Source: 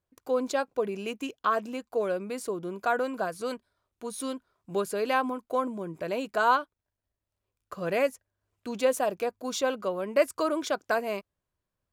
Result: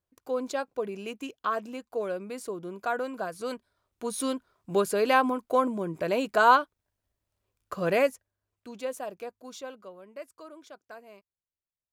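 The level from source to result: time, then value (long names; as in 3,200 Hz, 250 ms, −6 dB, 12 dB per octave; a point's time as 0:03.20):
0:03.24 −3 dB
0:04.07 +4 dB
0:07.89 +4 dB
0:08.76 −9 dB
0:09.31 −9 dB
0:10.24 −19 dB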